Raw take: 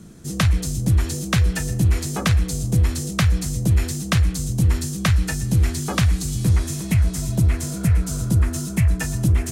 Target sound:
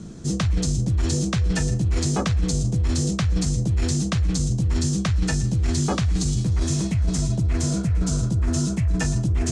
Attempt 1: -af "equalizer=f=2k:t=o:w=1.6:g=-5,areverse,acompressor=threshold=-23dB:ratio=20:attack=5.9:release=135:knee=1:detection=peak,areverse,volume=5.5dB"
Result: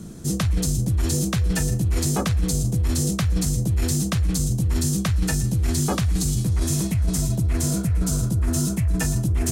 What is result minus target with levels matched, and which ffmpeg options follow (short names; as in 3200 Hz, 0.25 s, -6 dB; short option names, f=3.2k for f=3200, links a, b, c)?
8000 Hz band +2.5 dB
-af "lowpass=f=7.4k:w=0.5412,lowpass=f=7.4k:w=1.3066,equalizer=f=2k:t=o:w=1.6:g=-5,areverse,acompressor=threshold=-23dB:ratio=20:attack=5.9:release=135:knee=1:detection=peak,areverse,volume=5.5dB"